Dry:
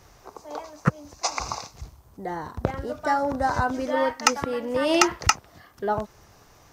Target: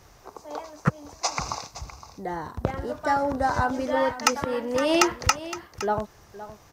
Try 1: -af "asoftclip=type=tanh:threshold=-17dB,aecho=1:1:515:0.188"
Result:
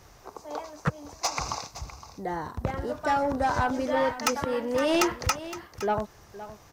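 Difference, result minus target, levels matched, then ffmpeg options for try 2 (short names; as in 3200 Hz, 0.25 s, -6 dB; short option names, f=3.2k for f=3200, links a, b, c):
soft clip: distortion +11 dB
-af "asoftclip=type=tanh:threshold=-6.5dB,aecho=1:1:515:0.188"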